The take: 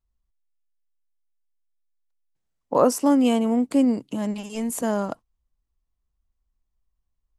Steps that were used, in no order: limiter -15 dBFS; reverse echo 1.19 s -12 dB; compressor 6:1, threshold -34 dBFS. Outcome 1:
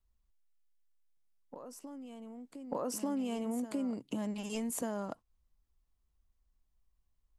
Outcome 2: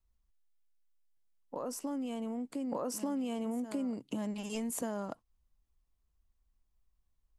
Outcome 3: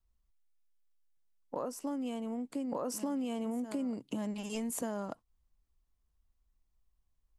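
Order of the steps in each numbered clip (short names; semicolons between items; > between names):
limiter > compressor > reverse echo; limiter > reverse echo > compressor; reverse echo > limiter > compressor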